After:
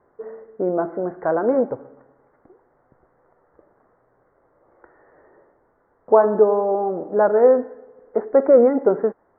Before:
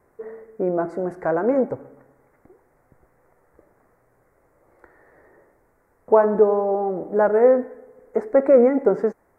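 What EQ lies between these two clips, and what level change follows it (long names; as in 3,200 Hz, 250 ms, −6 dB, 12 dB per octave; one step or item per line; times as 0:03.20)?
low-pass filter 1,600 Hz 24 dB per octave
low-shelf EQ 150 Hz −9 dB
+2.0 dB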